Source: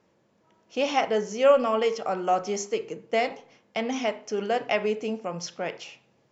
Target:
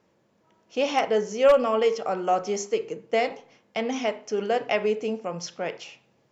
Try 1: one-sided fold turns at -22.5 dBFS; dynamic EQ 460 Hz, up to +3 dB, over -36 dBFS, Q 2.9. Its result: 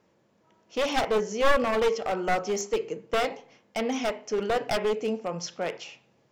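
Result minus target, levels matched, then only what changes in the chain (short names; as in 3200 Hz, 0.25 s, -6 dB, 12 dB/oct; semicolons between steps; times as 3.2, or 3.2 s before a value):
one-sided fold: distortion +22 dB
change: one-sided fold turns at -11 dBFS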